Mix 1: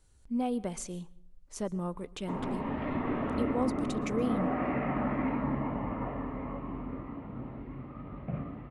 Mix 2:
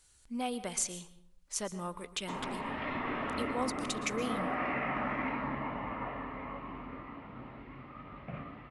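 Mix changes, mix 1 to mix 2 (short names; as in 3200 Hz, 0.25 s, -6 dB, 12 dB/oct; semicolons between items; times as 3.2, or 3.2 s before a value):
speech: send +8.0 dB; master: add tilt shelf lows -8.5 dB, about 920 Hz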